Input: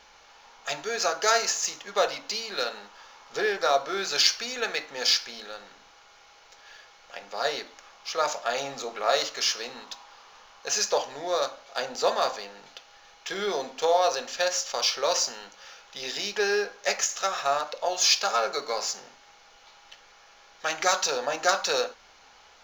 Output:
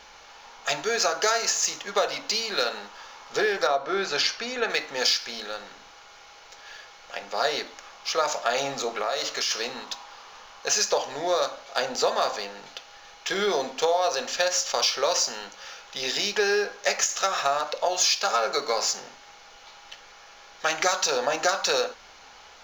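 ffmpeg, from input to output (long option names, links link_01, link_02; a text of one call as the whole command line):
ffmpeg -i in.wav -filter_complex "[0:a]asettb=1/sr,asplit=3[link_01][link_02][link_03];[link_01]atrim=end=3.674[link_04];[link_02]atrim=start=3.67:end=4.7,asetpts=PTS-STARTPTS,afade=type=in:duration=0.004:curve=qsin,afade=type=out:start_time=1.026:duration=0.004:curve=qsin,lowpass=frequency=2100:poles=1[link_05];[link_03]atrim=start=4.696[link_06];[link_04][link_05]acrossfade=duration=0.004:curve1=hsin:curve2=qsin[link_07];[link_07][link_06]acrossfade=duration=0.004:curve1=qsin:curve2=hsin,asplit=3[link_08][link_09][link_10];[link_08]afade=type=out:start_time=9.01:duration=0.02[link_11];[link_09]acompressor=threshold=-29dB:ratio=5:attack=3.2:release=140:knee=1:detection=peak,afade=type=in:start_time=9.01:duration=0.02,afade=type=out:start_time=9.5:duration=0.02[link_12];[link_10]afade=type=in:start_time=9.5:duration=0.02[link_13];[link_11][link_12][link_13]amix=inputs=3:normalize=0,acompressor=threshold=-25dB:ratio=6,volume=5.5dB" out.wav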